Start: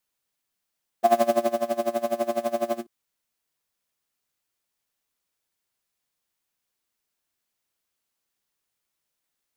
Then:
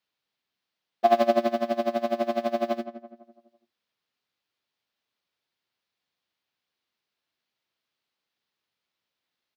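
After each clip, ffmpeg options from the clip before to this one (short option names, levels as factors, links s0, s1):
-filter_complex "[0:a]highpass=94,highshelf=f=5900:t=q:w=1.5:g=-13,asplit=2[s0][s1];[s1]adelay=167,lowpass=f=1600:p=1,volume=0.282,asplit=2[s2][s3];[s3]adelay=167,lowpass=f=1600:p=1,volume=0.48,asplit=2[s4][s5];[s5]adelay=167,lowpass=f=1600:p=1,volume=0.48,asplit=2[s6][s7];[s7]adelay=167,lowpass=f=1600:p=1,volume=0.48,asplit=2[s8][s9];[s9]adelay=167,lowpass=f=1600:p=1,volume=0.48[s10];[s0][s2][s4][s6][s8][s10]amix=inputs=6:normalize=0"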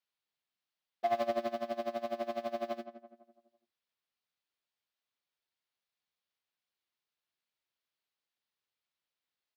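-af "equalizer=f=230:t=o:w=1.7:g=-4.5,asoftclip=type=tanh:threshold=0.188,volume=0.398"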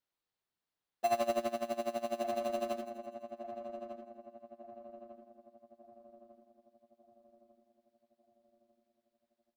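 -filter_complex "[0:a]asplit=2[s0][s1];[s1]acrusher=samples=13:mix=1:aa=0.000001,volume=0.631[s2];[s0][s2]amix=inputs=2:normalize=0,asplit=2[s3][s4];[s4]adelay=1198,lowpass=f=1100:p=1,volume=0.398,asplit=2[s5][s6];[s6]adelay=1198,lowpass=f=1100:p=1,volume=0.51,asplit=2[s7][s8];[s8]adelay=1198,lowpass=f=1100:p=1,volume=0.51,asplit=2[s9][s10];[s10]adelay=1198,lowpass=f=1100:p=1,volume=0.51,asplit=2[s11][s12];[s12]adelay=1198,lowpass=f=1100:p=1,volume=0.51,asplit=2[s13][s14];[s14]adelay=1198,lowpass=f=1100:p=1,volume=0.51[s15];[s3][s5][s7][s9][s11][s13][s15]amix=inputs=7:normalize=0,volume=0.668"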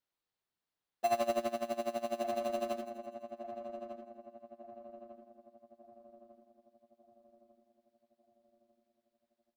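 -af anull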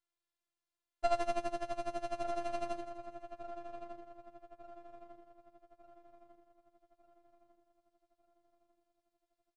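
-af "aeval=exprs='if(lt(val(0),0),0.251*val(0),val(0))':c=same,afftfilt=real='hypot(re,im)*cos(PI*b)':imag='0':win_size=512:overlap=0.75,aresample=22050,aresample=44100,volume=1.5"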